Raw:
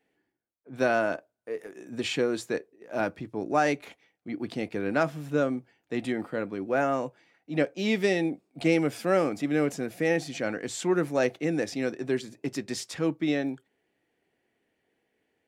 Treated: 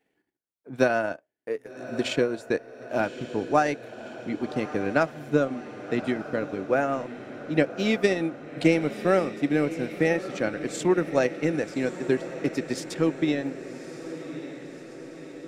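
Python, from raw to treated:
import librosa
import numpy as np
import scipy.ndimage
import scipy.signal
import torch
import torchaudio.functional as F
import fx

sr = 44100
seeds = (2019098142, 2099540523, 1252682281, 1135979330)

y = fx.transient(x, sr, attack_db=6, sustain_db=-10)
y = fx.echo_diffused(y, sr, ms=1152, feedback_pct=61, wet_db=-12.5)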